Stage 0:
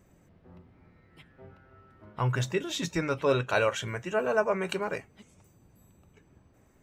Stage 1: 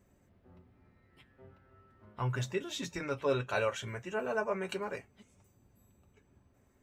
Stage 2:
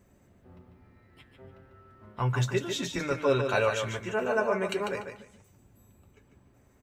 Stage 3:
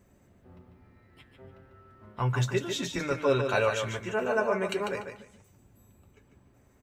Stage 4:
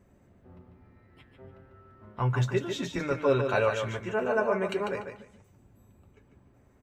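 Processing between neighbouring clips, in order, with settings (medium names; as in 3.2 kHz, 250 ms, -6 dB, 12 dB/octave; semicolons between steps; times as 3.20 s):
comb of notches 160 Hz; trim -5 dB
feedback delay 146 ms, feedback 23%, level -7 dB; trim +5.5 dB
no audible change
treble shelf 3.2 kHz -9 dB; trim +1 dB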